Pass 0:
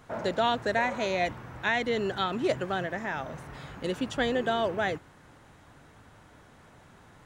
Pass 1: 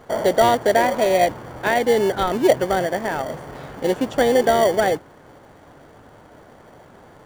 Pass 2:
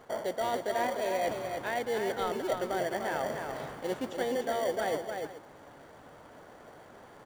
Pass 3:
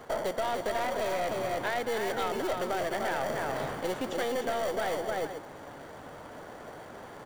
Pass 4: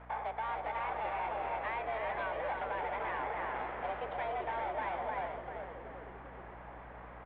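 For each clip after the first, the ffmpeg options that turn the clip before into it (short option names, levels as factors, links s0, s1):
-filter_complex "[0:a]equalizer=f=590:w=0.54:g=13,asplit=2[s0][s1];[s1]acrusher=samples=34:mix=1:aa=0.000001,volume=0.447[s2];[s0][s2]amix=inputs=2:normalize=0,volume=0.891"
-af "areverse,acompressor=threshold=0.0708:ratio=6,areverse,lowshelf=f=220:g=-7.5,aecho=1:1:197|299|429:0.141|0.531|0.158,volume=0.562"
-filter_complex "[0:a]acrossover=split=570|970[s0][s1][s2];[s0]alimiter=level_in=2.99:limit=0.0631:level=0:latency=1,volume=0.335[s3];[s3][s1][s2]amix=inputs=3:normalize=0,aeval=exprs='(tanh(28.2*val(0)+0.45)-tanh(0.45))/28.2':c=same,acompressor=threshold=0.0178:ratio=6,volume=2.66"
-filter_complex "[0:a]highpass=f=180:t=q:w=0.5412,highpass=f=180:t=q:w=1.307,lowpass=f=2700:t=q:w=0.5176,lowpass=f=2700:t=q:w=0.7071,lowpass=f=2700:t=q:w=1.932,afreqshift=220,aeval=exprs='val(0)+0.00447*(sin(2*PI*60*n/s)+sin(2*PI*2*60*n/s)/2+sin(2*PI*3*60*n/s)/3+sin(2*PI*4*60*n/s)/4+sin(2*PI*5*60*n/s)/5)':c=same,asplit=7[s0][s1][s2][s3][s4][s5][s6];[s1]adelay=388,afreqshift=-110,volume=0.473[s7];[s2]adelay=776,afreqshift=-220,volume=0.226[s8];[s3]adelay=1164,afreqshift=-330,volume=0.108[s9];[s4]adelay=1552,afreqshift=-440,volume=0.0525[s10];[s5]adelay=1940,afreqshift=-550,volume=0.0251[s11];[s6]adelay=2328,afreqshift=-660,volume=0.012[s12];[s0][s7][s8][s9][s10][s11][s12]amix=inputs=7:normalize=0,volume=0.473"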